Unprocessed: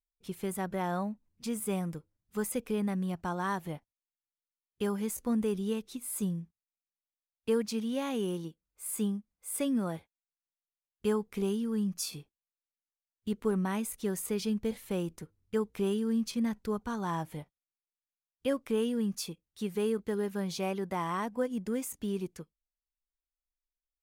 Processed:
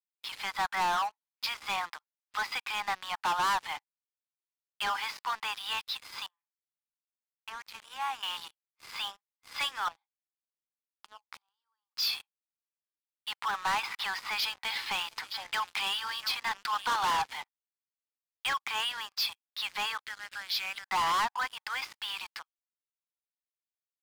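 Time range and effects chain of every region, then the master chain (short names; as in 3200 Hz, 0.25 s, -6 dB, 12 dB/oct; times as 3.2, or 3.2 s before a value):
6.26–8.23 HPF 620 Hz + compressor 4:1, threshold -39 dBFS + tape spacing loss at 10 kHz 39 dB
9.88–11.97 compressor 8:1, threshold -44 dBFS + bell 2400 Hz -14.5 dB 1.5 oct
13.83–17.22 delay with a stepping band-pass 0.23 s, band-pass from 210 Hz, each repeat 1.4 oct, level -8.5 dB + three-band squash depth 70%
20.05–20.88 compressor 4:1, threshold -37 dBFS + band shelf 870 Hz -12.5 dB 1 oct
whole clip: Chebyshev band-pass 810–5100 Hz, order 5; sample leveller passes 5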